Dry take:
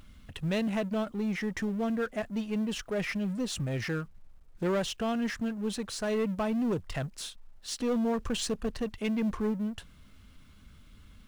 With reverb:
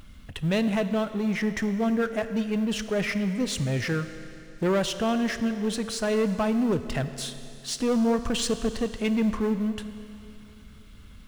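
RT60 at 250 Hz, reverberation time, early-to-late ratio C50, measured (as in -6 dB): 2.7 s, 2.8 s, 11.0 dB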